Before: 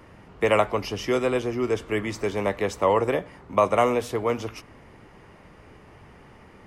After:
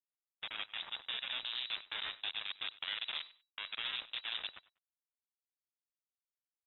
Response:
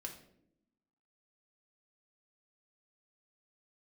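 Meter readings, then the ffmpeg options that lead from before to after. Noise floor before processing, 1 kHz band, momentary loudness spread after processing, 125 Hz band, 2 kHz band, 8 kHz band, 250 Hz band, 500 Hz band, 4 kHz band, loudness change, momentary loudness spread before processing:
−51 dBFS, −25.0 dB, 7 LU, below −35 dB, −10.5 dB, below −35 dB, −39.0 dB, −39.5 dB, +2.5 dB, −15.0 dB, 7 LU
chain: -filter_complex "[0:a]highpass=frequency=120:width=0.5412,highpass=frequency=120:width=1.3066,areverse,acompressor=threshold=-30dB:ratio=20,areverse,alimiter=level_in=7dB:limit=-24dB:level=0:latency=1:release=26,volume=-7dB,acrusher=bits=4:mix=0:aa=0.5,asoftclip=type=hard:threshold=-38.5dB,asplit=2[link_01][link_02];[link_02]aecho=0:1:97|194:0.112|0.0236[link_03];[link_01][link_03]amix=inputs=2:normalize=0,lowpass=frequency=3300:width_type=q:width=0.5098,lowpass=frequency=3300:width_type=q:width=0.6013,lowpass=frequency=3300:width_type=q:width=0.9,lowpass=frequency=3300:width_type=q:width=2.563,afreqshift=-3900,volume=11.5dB" -ar 48000 -c:a libopus -b:a 20k

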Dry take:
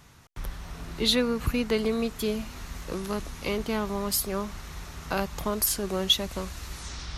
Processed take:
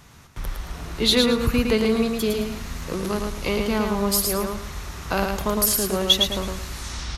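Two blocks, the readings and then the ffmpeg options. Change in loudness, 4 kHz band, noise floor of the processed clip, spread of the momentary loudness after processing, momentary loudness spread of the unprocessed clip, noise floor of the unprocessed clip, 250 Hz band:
+6.0 dB, +6.0 dB, −43 dBFS, 16 LU, 16 LU, −45 dBFS, +6.5 dB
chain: -af "aecho=1:1:110|220|330|440:0.631|0.183|0.0531|0.0154,volume=4.5dB"

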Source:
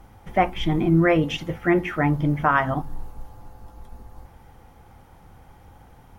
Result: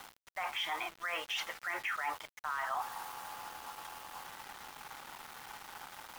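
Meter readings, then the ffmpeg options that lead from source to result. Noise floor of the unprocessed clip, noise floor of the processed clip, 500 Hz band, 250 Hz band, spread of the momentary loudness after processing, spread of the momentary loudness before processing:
−51 dBFS, −65 dBFS, −23.5 dB, −36.5 dB, 12 LU, 9 LU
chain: -af "highpass=frequency=1000:width=0.5412,highpass=frequency=1000:width=1.3066,highshelf=frequency=2100:gain=-6.5,areverse,acompressor=threshold=-44dB:ratio=12,areverse,alimiter=level_in=18dB:limit=-24dB:level=0:latency=1:release=37,volume=-18dB,aeval=exprs='val(0)*gte(abs(val(0)),0.001)':channel_layout=same,volume=15dB"

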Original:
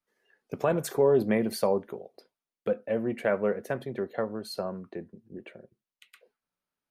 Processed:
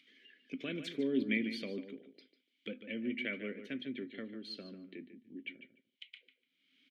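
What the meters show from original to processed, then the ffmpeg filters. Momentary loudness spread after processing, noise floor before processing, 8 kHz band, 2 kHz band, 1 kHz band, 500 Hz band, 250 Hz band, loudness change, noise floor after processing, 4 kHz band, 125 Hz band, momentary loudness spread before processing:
19 LU, below −85 dBFS, below −20 dB, −2.5 dB, −26.0 dB, −16.5 dB, −5.0 dB, −10.5 dB, −82 dBFS, −1.0 dB, −14.5 dB, 19 LU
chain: -filter_complex "[0:a]asplit=3[link_01][link_02][link_03];[link_01]bandpass=frequency=270:width_type=q:width=8,volume=0dB[link_04];[link_02]bandpass=frequency=2290:width_type=q:width=8,volume=-6dB[link_05];[link_03]bandpass=frequency=3010:width_type=q:width=8,volume=-9dB[link_06];[link_04][link_05][link_06]amix=inputs=3:normalize=0,equalizer=frequency=3300:width_type=o:width=1.6:gain=14.5,acompressor=mode=upward:threshold=-52dB:ratio=2.5,asplit=2[link_07][link_08];[link_08]adelay=147,lowpass=frequency=3700:poles=1,volume=-10.5dB,asplit=2[link_09][link_10];[link_10]adelay=147,lowpass=frequency=3700:poles=1,volume=0.17[link_11];[link_07][link_09][link_11]amix=inputs=3:normalize=0,volume=2.5dB"

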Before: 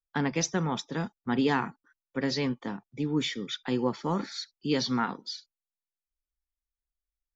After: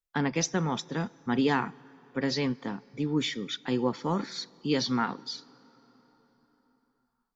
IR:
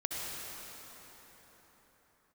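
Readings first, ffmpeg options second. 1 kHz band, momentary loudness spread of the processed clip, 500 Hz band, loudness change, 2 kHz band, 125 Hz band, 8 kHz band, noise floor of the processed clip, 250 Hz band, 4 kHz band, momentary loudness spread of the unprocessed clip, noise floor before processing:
+0.5 dB, 11 LU, +0.5 dB, +0.5 dB, +0.5 dB, +0.5 dB, can't be measured, −78 dBFS, +0.5 dB, +0.5 dB, 11 LU, below −85 dBFS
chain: -filter_complex "[0:a]asplit=2[link_01][link_02];[1:a]atrim=start_sample=2205[link_03];[link_02][link_03]afir=irnorm=-1:irlink=0,volume=-27.5dB[link_04];[link_01][link_04]amix=inputs=2:normalize=0"

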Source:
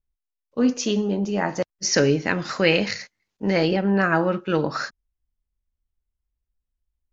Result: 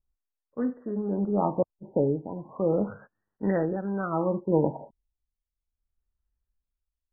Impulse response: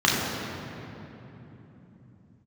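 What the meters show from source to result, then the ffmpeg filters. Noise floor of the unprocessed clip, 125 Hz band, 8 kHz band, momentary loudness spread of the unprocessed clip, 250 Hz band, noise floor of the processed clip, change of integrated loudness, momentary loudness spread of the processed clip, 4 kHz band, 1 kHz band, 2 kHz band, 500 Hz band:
−84 dBFS, −4.5 dB, can't be measured, 10 LU, −5.5 dB, below −85 dBFS, −6.0 dB, 7 LU, below −40 dB, −5.5 dB, −20.0 dB, −4.5 dB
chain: -af "tremolo=f=0.64:d=0.69,afftfilt=real='re*lt(b*sr/1024,950*pow(2000/950,0.5+0.5*sin(2*PI*0.36*pts/sr)))':imag='im*lt(b*sr/1024,950*pow(2000/950,0.5+0.5*sin(2*PI*0.36*pts/sr)))':win_size=1024:overlap=0.75"

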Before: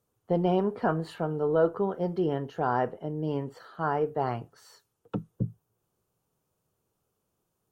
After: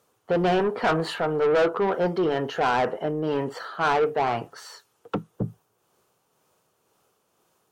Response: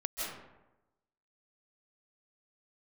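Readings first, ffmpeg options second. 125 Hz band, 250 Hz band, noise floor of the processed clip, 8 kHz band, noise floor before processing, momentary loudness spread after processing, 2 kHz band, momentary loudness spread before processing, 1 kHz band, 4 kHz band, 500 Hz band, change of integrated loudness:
−0.5 dB, +2.0 dB, −71 dBFS, can't be measured, −80 dBFS, 12 LU, +11.0 dB, 10 LU, +6.0 dB, +13.5 dB, +5.0 dB, +4.5 dB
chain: -filter_complex "[0:a]tremolo=f=2:d=0.33,asplit=2[link_01][link_02];[link_02]highpass=frequency=720:poles=1,volume=23dB,asoftclip=type=tanh:threshold=-13.5dB[link_03];[link_01][link_03]amix=inputs=2:normalize=0,lowpass=frequency=4900:poles=1,volume=-6dB"

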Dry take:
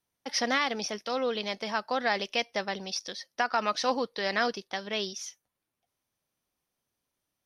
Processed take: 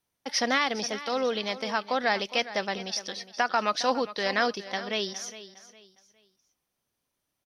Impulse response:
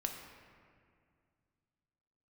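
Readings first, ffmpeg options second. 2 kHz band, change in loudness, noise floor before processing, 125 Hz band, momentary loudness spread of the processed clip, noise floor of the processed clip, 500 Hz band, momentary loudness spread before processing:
+2.0 dB, +2.0 dB, −85 dBFS, can't be measured, 8 LU, −82 dBFS, +2.0 dB, 7 LU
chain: -af "aecho=1:1:410|820|1230:0.178|0.0551|0.0171,volume=2dB"

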